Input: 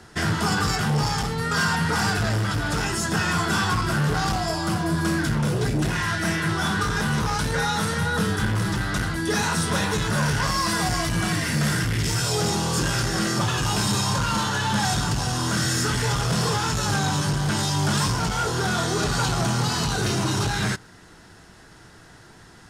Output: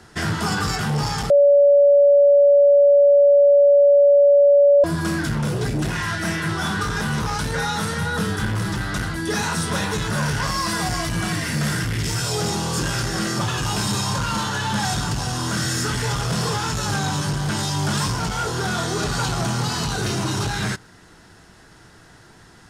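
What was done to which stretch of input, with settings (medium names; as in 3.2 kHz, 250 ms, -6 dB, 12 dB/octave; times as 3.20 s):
1.30–4.84 s: bleep 570 Hz -9.5 dBFS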